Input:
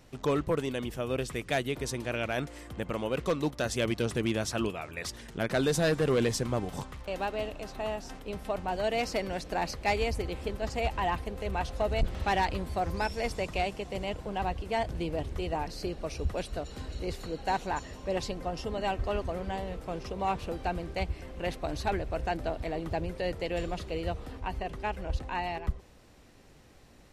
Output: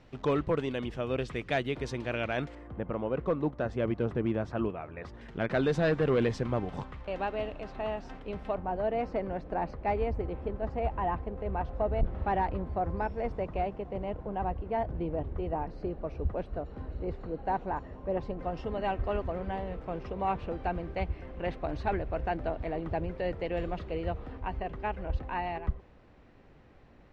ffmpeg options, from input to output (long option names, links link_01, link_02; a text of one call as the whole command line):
ffmpeg -i in.wav -af "asetnsamples=nb_out_samples=441:pad=0,asendcmd='2.55 lowpass f 1300;5.21 lowpass f 2600;8.55 lowpass f 1200;18.39 lowpass f 2200',lowpass=3500" out.wav